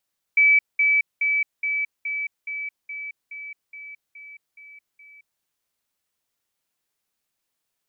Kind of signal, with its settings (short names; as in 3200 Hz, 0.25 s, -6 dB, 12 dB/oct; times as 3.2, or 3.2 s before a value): level ladder 2300 Hz -12.5 dBFS, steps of -3 dB, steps 12, 0.22 s 0.20 s